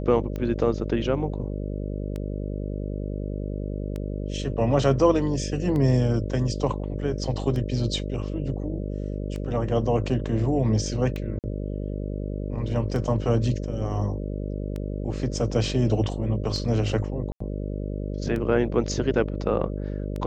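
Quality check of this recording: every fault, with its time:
buzz 50 Hz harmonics 12 -30 dBFS
tick 33 1/3 rpm -20 dBFS
11.39–11.44 s: dropout 48 ms
17.32–17.40 s: dropout 84 ms

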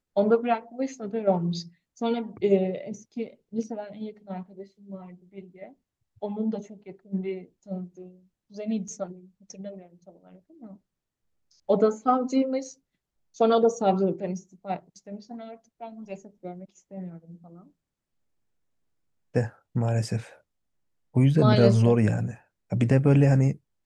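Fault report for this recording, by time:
8.88 s: dropout 4.2 ms

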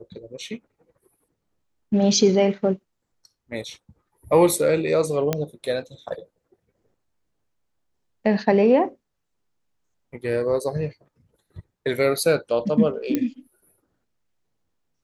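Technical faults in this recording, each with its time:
5.33 s: pop -8 dBFS
13.15 s: pop -10 dBFS

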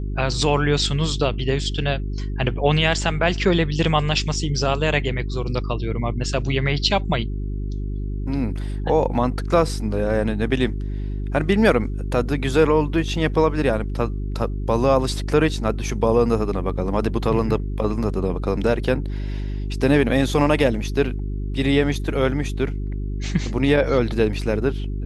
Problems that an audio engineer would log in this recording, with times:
hum 50 Hz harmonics 8 -26 dBFS

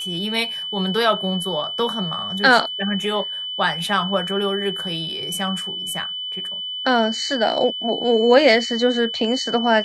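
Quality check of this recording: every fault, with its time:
whine 3 kHz -26 dBFS

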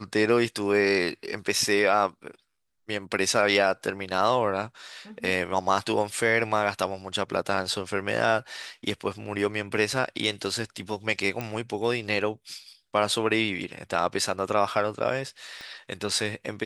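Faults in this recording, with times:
11.41 s: pop -16 dBFS
15.61 s: pop -26 dBFS

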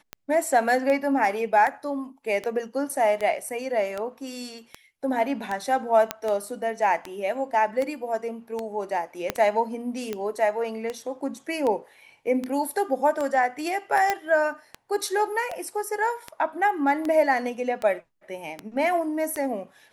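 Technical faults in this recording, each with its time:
tick 78 rpm -16 dBFS
6.11 s: pop -8 dBFS
9.30 s: pop -9 dBFS
14.10 s: pop -9 dBFS

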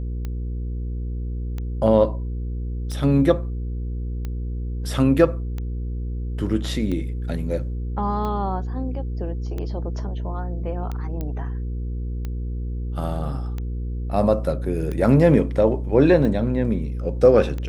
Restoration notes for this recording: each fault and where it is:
hum 60 Hz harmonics 8 -27 dBFS
tick 45 rpm -18 dBFS
11.21 s: pop -17 dBFS

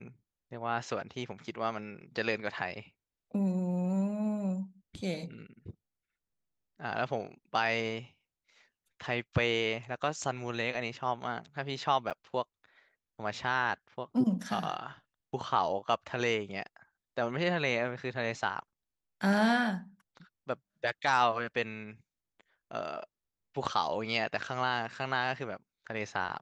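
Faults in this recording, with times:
12.10–12.11 s: dropout 7.4 ms

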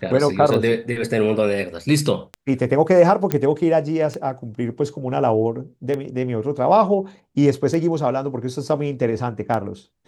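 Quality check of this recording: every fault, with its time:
tick 33 1/3 rpm -14 dBFS
3.32 s: pop -6 dBFS

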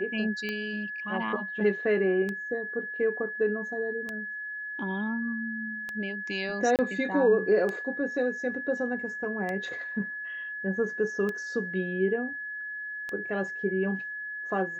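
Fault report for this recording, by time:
tick 33 1/3 rpm -20 dBFS
whine 1.7 kHz -34 dBFS
6.76–6.79 s: dropout 28 ms

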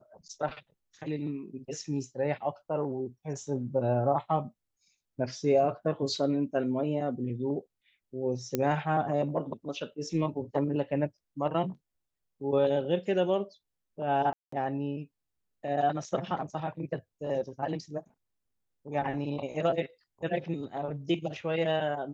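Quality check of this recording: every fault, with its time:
8.55 s: pop -13 dBFS
14.33–14.52 s: dropout 194 ms

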